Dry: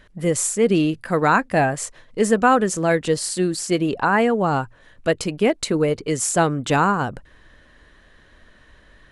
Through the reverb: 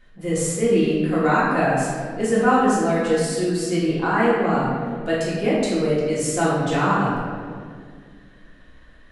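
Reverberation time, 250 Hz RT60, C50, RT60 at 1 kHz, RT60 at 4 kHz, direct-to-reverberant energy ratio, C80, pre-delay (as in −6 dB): 2.0 s, 2.9 s, −1.5 dB, 1.7 s, 1.3 s, −8.5 dB, 1.0 dB, 3 ms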